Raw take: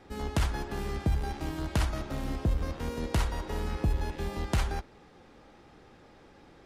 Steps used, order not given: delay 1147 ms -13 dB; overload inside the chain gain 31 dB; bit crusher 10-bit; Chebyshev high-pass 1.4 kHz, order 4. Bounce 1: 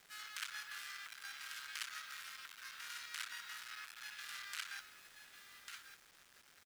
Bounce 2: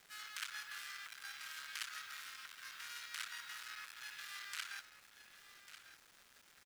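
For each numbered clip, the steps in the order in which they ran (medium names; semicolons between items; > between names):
delay > overload inside the chain > Chebyshev high-pass > bit crusher; overload inside the chain > Chebyshev high-pass > bit crusher > delay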